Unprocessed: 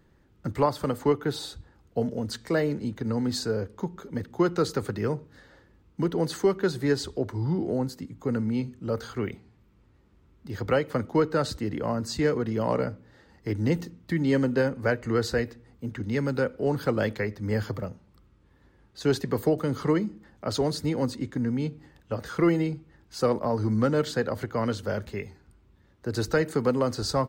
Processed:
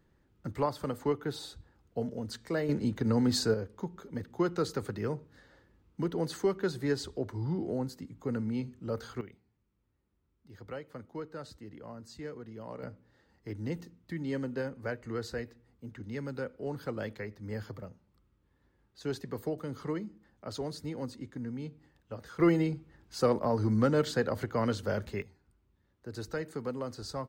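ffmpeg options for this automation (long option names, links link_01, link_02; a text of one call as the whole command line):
ffmpeg -i in.wav -af "asetnsamples=nb_out_samples=441:pad=0,asendcmd='2.69 volume volume 0.5dB;3.54 volume volume -6dB;9.21 volume volume -17.5dB;12.83 volume volume -11dB;22.4 volume volume -2.5dB;25.22 volume volume -12dB',volume=-7dB" out.wav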